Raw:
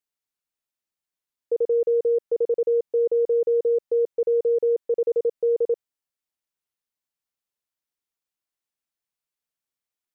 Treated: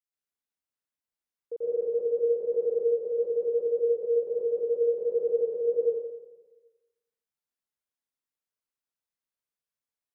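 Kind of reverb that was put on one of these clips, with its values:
dense smooth reverb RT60 1.2 s, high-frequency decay 0.5×, pre-delay 100 ms, DRR −8 dB
level −12.5 dB

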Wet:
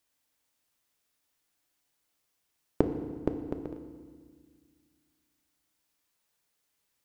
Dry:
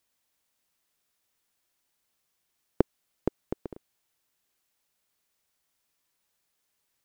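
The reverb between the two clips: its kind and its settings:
feedback delay network reverb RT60 1.7 s, low-frequency decay 1.45×, high-frequency decay 0.85×, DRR 6 dB
level −1.5 dB

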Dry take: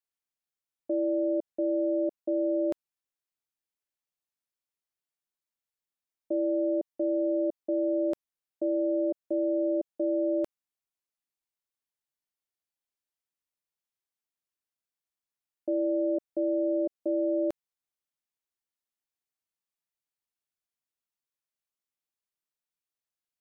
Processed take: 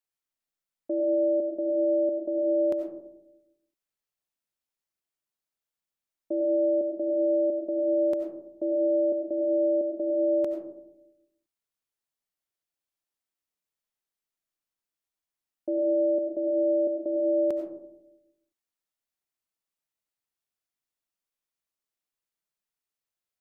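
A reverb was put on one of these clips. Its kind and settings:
comb and all-pass reverb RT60 0.84 s, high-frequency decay 0.25×, pre-delay 50 ms, DRR 4.5 dB

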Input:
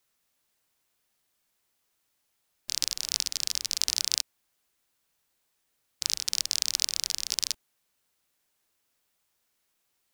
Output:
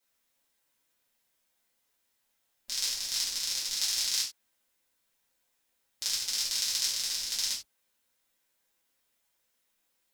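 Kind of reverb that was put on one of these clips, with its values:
reverb whose tail is shaped and stops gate 120 ms falling, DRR −8 dB
level −9 dB

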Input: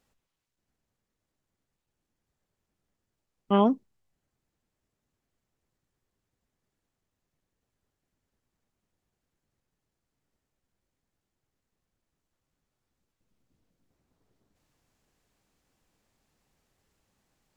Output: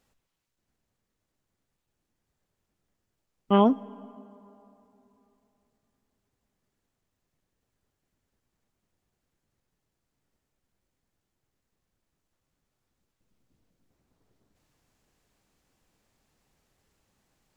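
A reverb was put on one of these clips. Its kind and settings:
dense smooth reverb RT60 3.3 s, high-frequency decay 0.55×, DRR 20 dB
level +2 dB

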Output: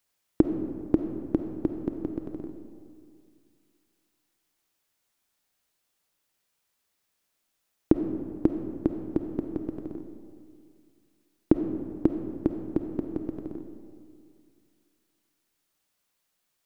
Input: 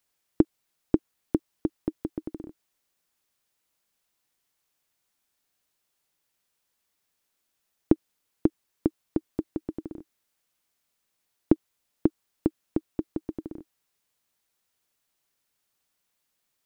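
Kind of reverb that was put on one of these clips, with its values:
comb and all-pass reverb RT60 2.3 s, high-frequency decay 0.5×, pre-delay 10 ms, DRR 5.5 dB

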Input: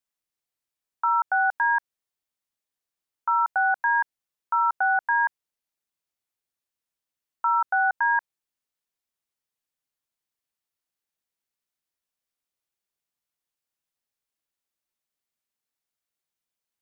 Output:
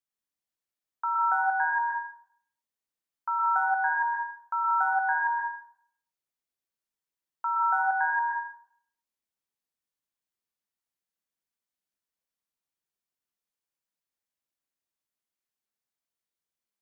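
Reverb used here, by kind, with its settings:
dense smooth reverb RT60 0.65 s, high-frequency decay 0.55×, pre-delay 105 ms, DRR 0.5 dB
level −6.5 dB

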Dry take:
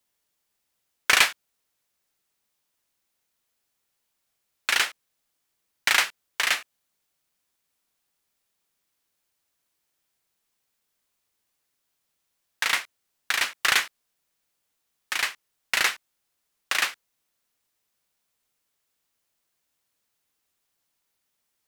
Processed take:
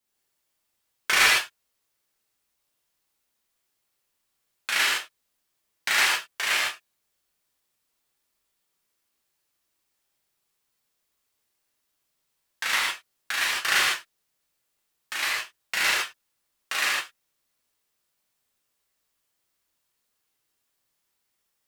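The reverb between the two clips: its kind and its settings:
reverb whose tail is shaped and stops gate 180 ms flat, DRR −7 dB
level −7 dB

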